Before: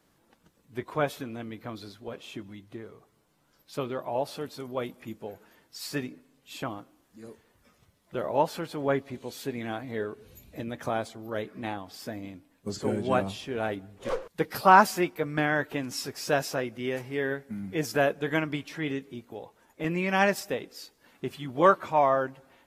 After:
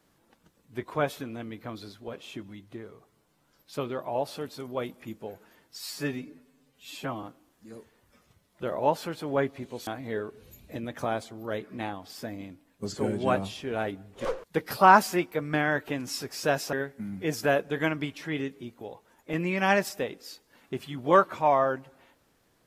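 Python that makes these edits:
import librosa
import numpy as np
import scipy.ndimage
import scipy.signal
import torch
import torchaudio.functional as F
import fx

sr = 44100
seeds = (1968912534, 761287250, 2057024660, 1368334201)

y = fx.edit(x, sr, fx.stretch_span(start_s=5.79, length_s=0.96, factor=1.5),
    fx.cut(start_s=9.39, length_s=0.32),
    fx.cut(start_s=16.57, length_s=0.67), tone=tone)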